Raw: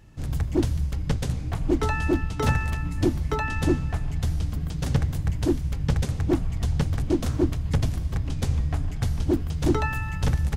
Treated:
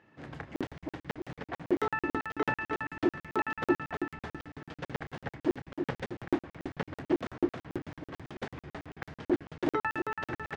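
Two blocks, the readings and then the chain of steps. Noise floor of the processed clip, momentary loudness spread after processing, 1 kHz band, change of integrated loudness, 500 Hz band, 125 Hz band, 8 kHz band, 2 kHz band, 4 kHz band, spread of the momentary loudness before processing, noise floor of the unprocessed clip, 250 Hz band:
under -85 dBFS, 13 LU, -2.5 dB, -8.5 dB, -4.5 dB, -20.5 dB, under -15 dB, -2.0 dB, -10.0 dB, 5 LU, -31 dBFS, -7.0 dB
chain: band-pass 310–2400 Hz; peaking EQ 1.8 kHz +4.5 dB 0.61 oct; doubling 31 ms -13 dB; feedback delay 313 ms, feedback 44%, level -7 dB; crackling interface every 0.11 s, samples 2048, zero, from 0.56 s; trim -2 dB

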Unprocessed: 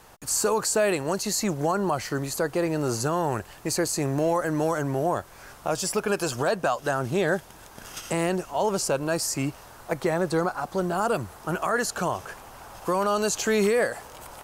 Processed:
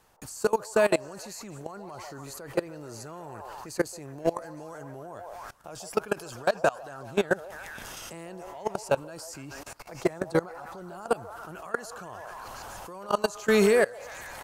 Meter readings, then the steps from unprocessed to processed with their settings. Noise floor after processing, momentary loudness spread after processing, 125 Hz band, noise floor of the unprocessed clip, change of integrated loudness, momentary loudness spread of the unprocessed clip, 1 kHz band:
-44 dBFS, 18 LU, -9.5 dB, -48 dBFS, -3.0 dB, 11 LU, -6.0 dB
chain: repeats whose band climbs or falls 144 ms, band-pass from 690 Hz, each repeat 0.7 oct, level -4 dB; level held to a coarse grid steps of 22 dB; trim +2.5 dB

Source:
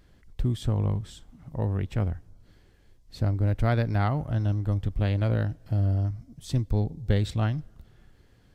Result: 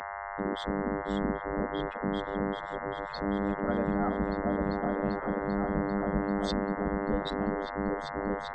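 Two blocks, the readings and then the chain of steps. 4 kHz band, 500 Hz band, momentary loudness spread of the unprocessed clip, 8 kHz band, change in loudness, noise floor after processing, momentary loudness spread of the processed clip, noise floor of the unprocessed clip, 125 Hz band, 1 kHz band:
+0.5 dB, +4.5 dB, 7 LU, no reading, -4.0 dB, -38 dBFS, 4 LU, -59 dBFS, -14.5 dB, +5.5 dB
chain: spectral contrast enhancement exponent 2; on a send: delay with an opening low-pass 393 ms, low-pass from 200 Hz, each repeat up 2 oct, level 0 dB; on the sum: spectral noise reduction 17 dB; peaking EQ 62 Hz +14 dB 0.91 oct; in parallel at +1.5 dB: peak limiter -14 dBFS, peak gain reduction 10 dB; on the sum: mains buzz 100 Hz, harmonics 21, -25 dBFS -7 dB/octave; distance through air 94 m; spectral gate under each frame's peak -20 dB weak; trim +1.5 dB

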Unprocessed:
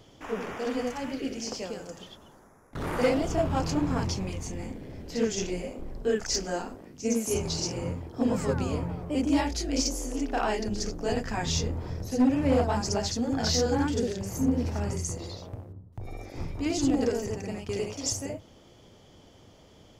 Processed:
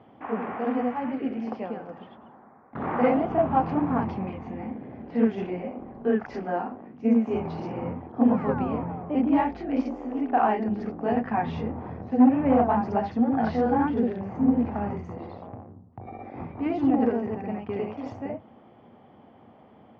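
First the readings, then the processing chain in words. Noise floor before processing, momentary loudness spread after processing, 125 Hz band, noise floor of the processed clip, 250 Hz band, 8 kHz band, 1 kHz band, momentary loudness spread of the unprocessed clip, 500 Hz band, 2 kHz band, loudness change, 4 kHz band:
-55 dBFS, 15 LU, -3.0 dB, -53 dBFS, +5.0 dB, under -35 dB, +7.5 dB, 14 LU, +1.5 dB, -0.5 dB, +3.0 dB, under -15 dB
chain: cabinet simulation 120–2300 Hz, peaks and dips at 230 Hz +9 dB, 770 Hz +10 dB, 1.1 kHz +5 dB

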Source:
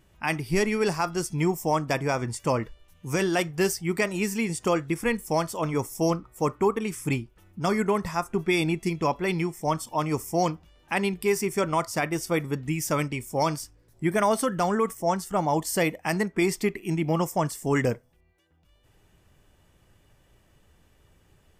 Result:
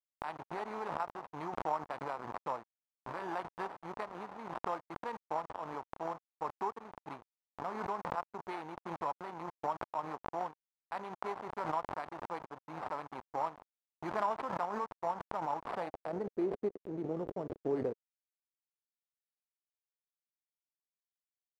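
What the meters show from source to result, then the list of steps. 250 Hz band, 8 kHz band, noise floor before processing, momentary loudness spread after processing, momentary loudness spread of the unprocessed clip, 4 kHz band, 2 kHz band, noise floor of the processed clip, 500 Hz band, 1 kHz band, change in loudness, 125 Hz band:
-17.0 dB, under -30 dB, -62 dBFS, 9 LU, 5 LU, -21.0 dB, -17.0 dB, under -85 dBFS, -13.5 dB, -8.0 dB, -13.0 dB, -21.5 dB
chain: formants flattened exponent 0.6; sample-rate reducer 6.4 kHz, jitter 0%; hysteresis with a dead band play -23 dBFS; band-pass sweep 930 Hz -> 430 Hz, 15.67–16.34 s; swell ahead of each attack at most 42 dB/s; trim -5 dB

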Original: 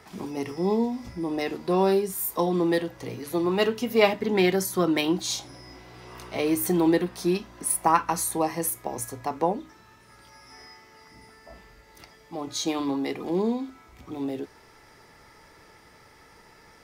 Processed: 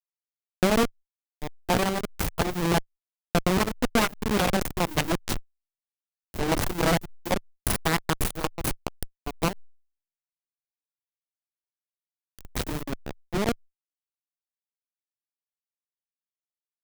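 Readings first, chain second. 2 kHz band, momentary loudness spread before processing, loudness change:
+2.5 dB, 15 LU, -1.5 dB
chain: send-on-delta sampling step -18.5 dBFS; compression 6:1, threshold -26 dBFS, peak gain reduction 12 dB; Chebyshev shaper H 4 -6 dB, 7 -12 dB, 8 -9 dB, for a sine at -15.5 dBFS

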